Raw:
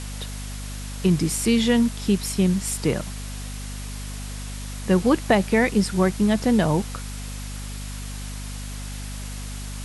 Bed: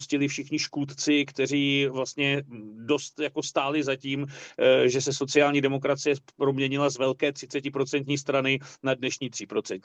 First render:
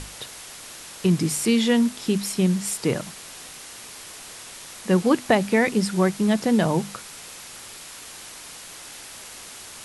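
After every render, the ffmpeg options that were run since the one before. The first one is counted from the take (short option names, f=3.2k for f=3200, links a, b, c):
-af "bandreject=f=50:t=h:w=6,bandreject=f=100:t=h:w=6,bandreject=f=150:t=h:w=6,bandreject=f=200:t=h:w=6,bandreject=f=250:t=h:w=6"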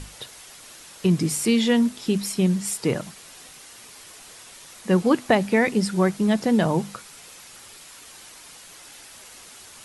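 -af "afftdn=nr=6:nf=-41"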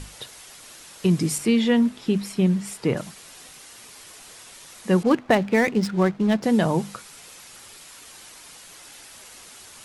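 -filter_complex "[0:a]asettb=1/sr,asplit=3[a][b][c];[a]atrim=end=1.384[d];[b]atrim=start=1.38:end=2.97,asetpts=PTS-STARTPTS,afade=t=in:d=0.004:c=qsin,afade=t=out:st=1.586:d=0.004:c=qsin,bass=f=250:g=1,treble=f=4k:g=-9[e];[c]atrim=start=2.966[f];[d][e]acrossfade=d=0.004:c1=hsin:c2=qsin[g];[g][f]acrossfade=d=0.004:c1=qsin:c2=hsin,asettb=1/sr,asplit=3[h][i][j];[h]atrim=end=5.034[k];[i]atrim=start=5.03:end=6.43,asetpts=PTS-STARTPTS,afade=t=in:d=0.004:c=qsin,afade=t=out:st=1.396:d=0.004:c=qsin,adynamicsmooth=sensitivity=7:basefreq=1.2k[l];[j]atrim=start=6.426[m];[k][l]acrossfade=d=0.004:c1=hsin:c2=qsin[n];[n][m]acrossfade=d=0.004:c1=qsin:c2=hsin"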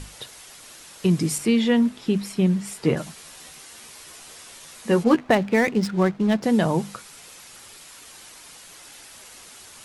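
-filter_complex "[0:a]asettb=1/sr,asplit=3[a][b][c];[a]atrim=end=2.754[d];[b]atrim=start=2.75:end=5.29,asetpts=PTS-STARTPTS,afade=t=in:d=0.004:c=qsin,afade=t=out:st=2.536:d=0.004:c=qsin,asplit=2[e][f];[f]adelay=13,volume=-5dB[g];[e][g]amix=inputs=2:normalize=0,atrim=end_sample=112014[h];[c]atrim=start=5.286[i];[d][h]acrossfade=d=0.004:c1=hsin:c2=qsin[j];[j][i]acrossfade=d=0.004:c1=qsin:c2=hsin"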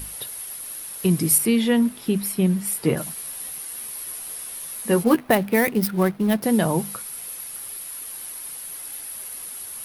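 -af "aexciter=amount=13.6:drive=3:freq=10k"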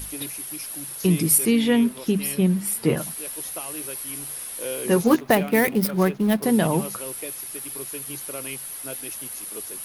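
-filter_complex "[1:a]volume=-12dB[a];[0:a][a]amix=inputs=2:normalize=0"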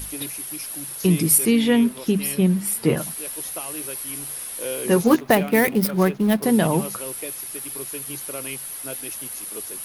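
-af "volume=1.5dB"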